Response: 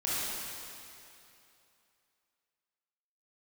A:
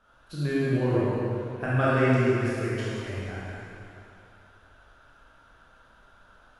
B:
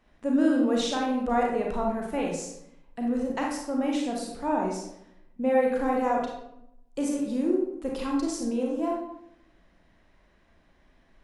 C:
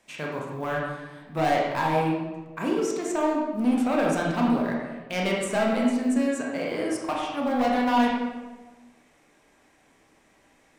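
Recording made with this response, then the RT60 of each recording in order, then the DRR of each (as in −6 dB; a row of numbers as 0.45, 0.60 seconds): A; 2.8, 0.80, 1.2 seconds; −9.0, −1.5, −3.0 decibels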